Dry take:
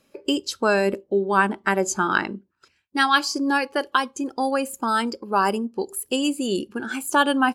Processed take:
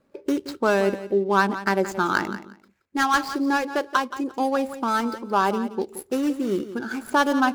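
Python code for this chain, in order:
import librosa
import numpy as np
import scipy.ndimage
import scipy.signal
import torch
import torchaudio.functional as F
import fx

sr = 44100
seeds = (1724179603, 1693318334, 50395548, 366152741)

y = scipy.signal.medfilt(x, 15)
y = fx.echo_feedback(y, sr, ms=174, feedback_pct=18, wet_db=-13)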